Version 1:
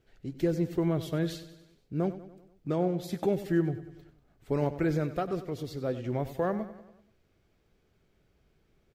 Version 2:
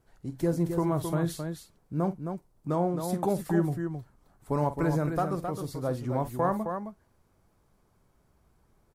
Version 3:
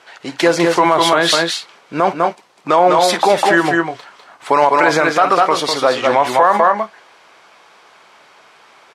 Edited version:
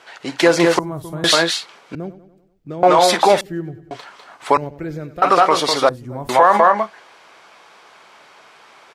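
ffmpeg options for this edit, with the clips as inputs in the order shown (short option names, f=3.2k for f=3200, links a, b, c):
-filter_complex "[1:a]asplit=2[a][b];[0:a]asplit=3[c][d][e];[2:a]asplit=6[f][g][h][i][j][k];[f]atrim=end=0.792[l];[a]atrim=start=0.788:end=1.242[m];[g]atrim=start=1.238:end=1.952[n];[c]atrim=start=1.948:end=2.832[o];[h]atrim=start=2.828:end=3.412[p];[d]atrim=start=3.408:end=3.912[q];[i]atrim=start=3.908:end=4.572[r];[e]atrim=start=4.568:end=5.222[s];[j]atrim=start=5.218:end=5.892[t];[b]atrim=start=5.888:end=6.292[u];[k]atrim=start=6.288[v];[l][m]acrossfade=d=0.004:c1=hsin:c2=hsin[w];[w][n]acrossfade=d=0.004:c1=hsin:c2=hsin[x];[x][o]acrossfade=d=0.004:c1=hsin:c2=hsin[y];[y][p]acrossfade=d=0.004:c1=hsin:c2=hsin[z];[z][q]acrossfade=d=0.004:c1=hsin:c2=hsin[aa];[aa][r]acrossfade=d=0.004:c1=hsin:c2=hsin[ab];[ab][s]acrossfade=d=0.004:c1=hsin:c2=hsin[ac];[ac][t]acrossfade=d=0.004:c1=hsin:c2=hsin[ad];[ad][u]acrossfade=d=0.004:c1=hsin:c2=hsin[ae];[ae][v]acrossfade=d=0.004:c1=hsin:c2=hsin"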